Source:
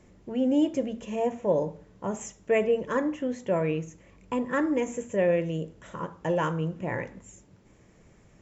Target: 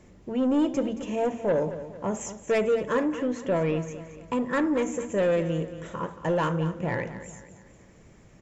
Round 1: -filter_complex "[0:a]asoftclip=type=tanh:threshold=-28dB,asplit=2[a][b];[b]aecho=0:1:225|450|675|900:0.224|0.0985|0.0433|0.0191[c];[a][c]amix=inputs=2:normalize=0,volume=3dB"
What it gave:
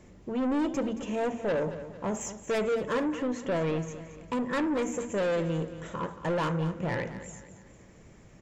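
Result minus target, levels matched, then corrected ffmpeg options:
soft clip: distortion +7 dB
-filter_complex "[0:a]asoftclip=type=tanh:threshold=-21dB,asplit=2[a][b];[b]aecho=0:1:225|450|675|900:0.224|0.0985|0.0433|0.0191[c];[a][c]amix=inputs=2:normalize=0,volume=3dB"

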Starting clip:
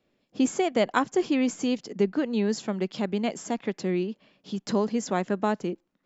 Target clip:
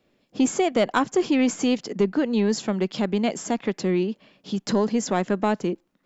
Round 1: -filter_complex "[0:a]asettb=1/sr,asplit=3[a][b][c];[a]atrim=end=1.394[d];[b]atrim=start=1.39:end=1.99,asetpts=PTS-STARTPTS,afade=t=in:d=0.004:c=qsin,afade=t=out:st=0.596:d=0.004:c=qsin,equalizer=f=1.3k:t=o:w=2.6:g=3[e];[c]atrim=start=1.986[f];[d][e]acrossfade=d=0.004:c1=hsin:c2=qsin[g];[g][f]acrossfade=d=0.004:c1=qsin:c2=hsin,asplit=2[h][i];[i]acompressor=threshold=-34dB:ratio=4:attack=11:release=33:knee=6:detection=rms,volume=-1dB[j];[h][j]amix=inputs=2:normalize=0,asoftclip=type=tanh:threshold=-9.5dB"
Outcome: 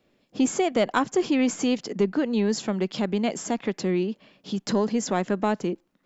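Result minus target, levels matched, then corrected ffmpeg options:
compressor: peak gain reduction +7 dB
-filter_complex "[0:a]asettb=1/sr,asplit=3[a][b][c];[a]atrim=end=1.394[d];[b]atrim=start=1.39:end=1.99,asetpts=PTS-STARTPTS,afade=t=in:d=0.004:c=qsin,afade=t=out:st=0.596:d=0.004:c=qsin,equalizer=f=1.3k:t=o:w=2.6:g=3[e];[c]atrim=start=1.986[f];[d][e]acrossfade=d=0.004:c1=hsin:c2=qsin[g];[g][f]acrossfade=d=0.004:c1=qsin:c2=hsin,asplit=2[h][i];[i]acompressor=threshold=-24.5dB:ratio=4:attack=11:release=33:knee=6:detection=rms,volume=-1dB[j];[h][j]amix=inputs=2:normalize=0,asoftclip=type=tanh:threshold=-9.5dB"

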